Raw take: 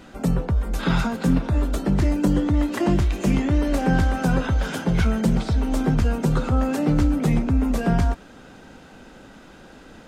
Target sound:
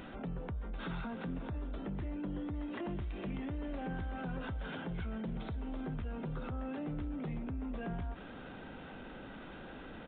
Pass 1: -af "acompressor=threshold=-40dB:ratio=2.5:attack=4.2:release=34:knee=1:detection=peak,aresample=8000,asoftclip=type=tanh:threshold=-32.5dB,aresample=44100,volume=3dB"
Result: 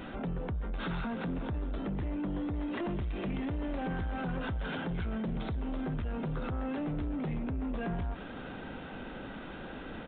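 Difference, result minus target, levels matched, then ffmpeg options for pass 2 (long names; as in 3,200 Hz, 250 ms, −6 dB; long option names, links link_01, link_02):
downward compressor: peak gain reduction −7 dB
-af "acompressor=threshold=-52dB:ratio=2.5:attack=4.2:release=34:knee=1:detection=peak,aresample=8000,asoftclip=type=tanh:threshold=-32.5dB,aresample=44100,volume=3dB"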